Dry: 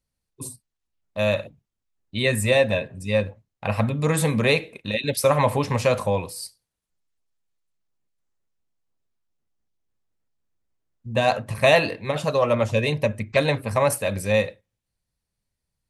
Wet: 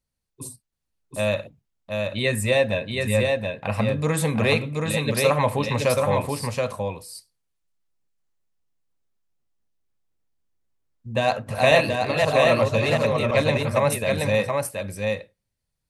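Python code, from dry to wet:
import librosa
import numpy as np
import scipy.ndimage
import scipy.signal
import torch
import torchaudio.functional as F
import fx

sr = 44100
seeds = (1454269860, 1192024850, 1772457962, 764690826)

y = fx.reverse_delay(x, sr, ms=265, wet_db=-3, at=(11.19, 13.63))
y = y + 10.0 ** (-3.5 / 20.0) * np.pad(y, (int(726 * sr / 1000.0), 0))[:len(y)]
y = y * librosa.db_to_amplitude(-1.5)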